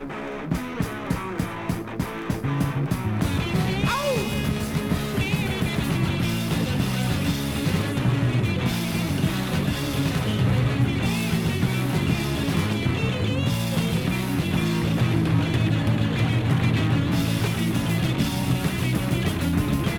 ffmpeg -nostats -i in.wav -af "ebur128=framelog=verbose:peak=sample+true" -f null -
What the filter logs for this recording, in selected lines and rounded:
Integrated loudness:
  I:         -24.0 LUFS
  Threshold: -34.0 LUFS
Loudness range:
  LRA:         2.8 LU
  Threshold: -43.8 LUFS
  LRA low:   -25.2 LUFS
  LRA high:  -22.4 LUFS
Sample peak:
  Peak:      -10.1 dBFS
True peak:
  Peak:      -10.0 dBFS